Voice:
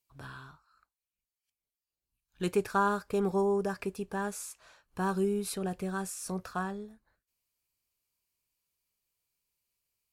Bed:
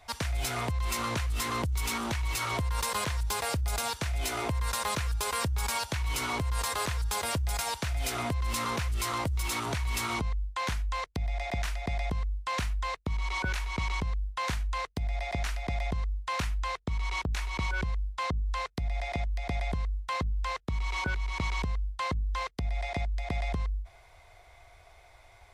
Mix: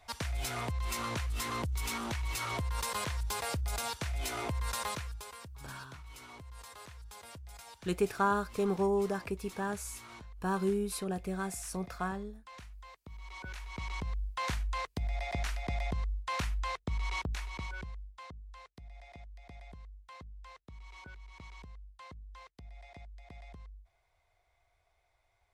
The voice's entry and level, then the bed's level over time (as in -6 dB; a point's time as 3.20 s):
5.45 s, -1.5 dB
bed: 4.85 s -4.5 dB
5.40 s -19 dB
12.97 s -19 dB
14.28 s -3 dB
17.15 s -3 dB
18.42 s -19 dB